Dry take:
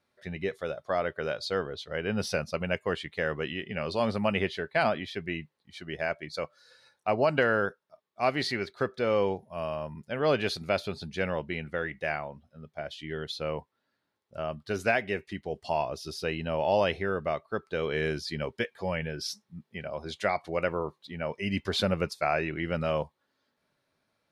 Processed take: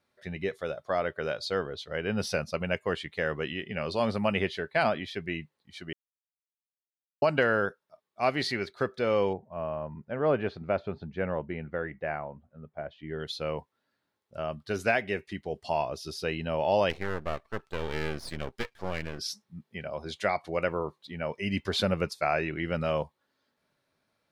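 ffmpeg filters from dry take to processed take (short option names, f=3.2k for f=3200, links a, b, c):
-filter_complex "[0:a]asettb=1/sr,asplit=3[a][b][c];[a]atrim=end=9.334[d];[b]atrim=start=9.33:end=13.2,asetpts=PTS-STARTPTS,afade=t=in:d=0.004:c=qsin,afade=t=out:st=3.866:d=0.004:c=qsin,lowpass=1.5k[e];[c]atrim=start=13.196[f];[d][e]acrossfade=d=0.004:c1=hsin:c2=qsin[g];[g][f]acrossfade=d=0.004:c1=qsin:c2=hsin,asplit=3[h][i][j];[h]afade=t=out:st=16.89:d=0.02[k];[i]aeval=exprs='max(val(0),0)':c=same,afade=t=in:st=16.89:d=0.02,afade=t=out:st=19.18:d=0.02[l];[j]afade=t=in:st=19.18:d=0.02[m];[k][l][m]amix=inputs=3:normalize=0,asplit=3[n][o][p];[n]atrim=end=5.93,asetpts=PTS-STARTPTS,afade=t=out:st=5.926:d=0.004:c=hsin[q];[o]atrim=start=5.93:end=7.22,asetpts=PTS-STARTPTS,volume=0[r];[p]atrim=start=7.22,asetpts=PTS-STARTPTS,afade=t=in:d=0.004:c=hsin[s];[q][r][s]concat=n=3:v=0:a=1"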